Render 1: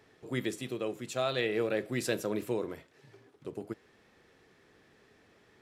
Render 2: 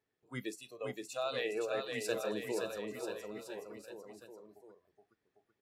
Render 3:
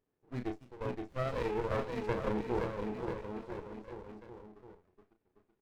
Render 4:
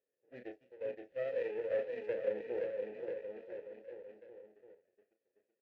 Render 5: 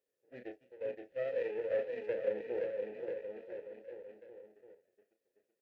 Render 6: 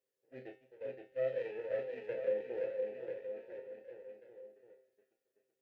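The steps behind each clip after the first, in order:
noise reduction from a noise print of the clip's start 19 dB; on a send: bouncing-ball delay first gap 520 ms, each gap 0.9×, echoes 5; on the sum: level −5 dB
low-pass filter 1,700 Hz 12 dB per octave; double-tracking delay 33 ms −7 dB; windowed peak hold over 33 samples; level +4 dB
formant filter e; level +5.5 dB
notch filter 1,100 Hz, Q 11; level +1 dB
tuned comb filter 130 Hz, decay 0.41 s, harmonics all, mix 80%; level +7 dB

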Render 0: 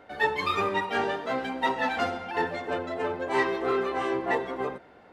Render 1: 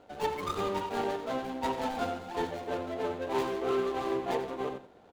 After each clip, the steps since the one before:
running median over 25 samples
on a send: single-tap delay 89 ms −11.5 dB
on the sum: level −2.5 dB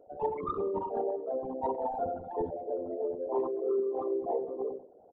spectral envelope exaggerated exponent 3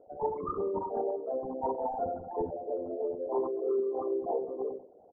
low-pass filter 1,400 Hz 24 dB per octave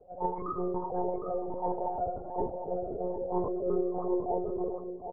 one-pitch LPC vocoder at 8 kHz 180 Hz
slap from a distant wall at 130 metres, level −8 dB

